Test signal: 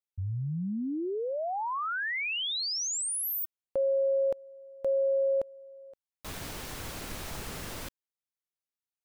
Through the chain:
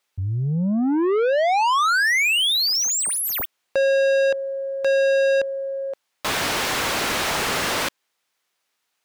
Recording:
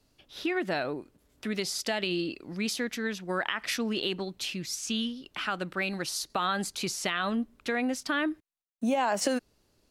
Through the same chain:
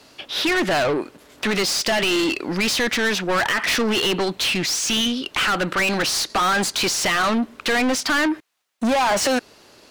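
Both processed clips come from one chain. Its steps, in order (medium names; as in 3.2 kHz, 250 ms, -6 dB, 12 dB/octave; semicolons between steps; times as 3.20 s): treble shelf 5.2 kHz -4.5 dB; overdrive pedal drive 31 dB, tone 5.8 kHz, clips at -13.5 dBFS; trim +1 dB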